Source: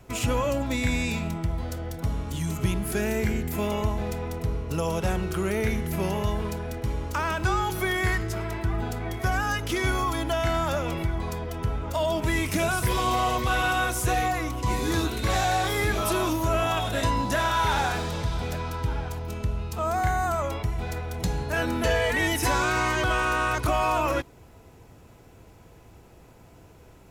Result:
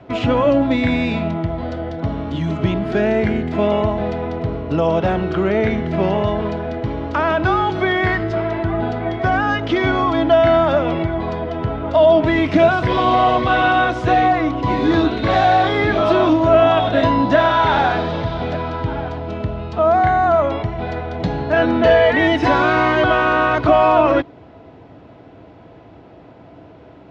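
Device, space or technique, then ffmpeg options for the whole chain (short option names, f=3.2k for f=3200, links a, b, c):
guitar cabinet: -af "highpass=98,equalizer=f=290:t=q:w=4:g=8,equalizer=f=650:t=q:w=4:g=8,equalizer=f=2.5k:t=q:w=4:g=-4,lowpass=f=3.7k:w=0.5412,lowpass=f=3.7k:w=1.3066,volume=8dB"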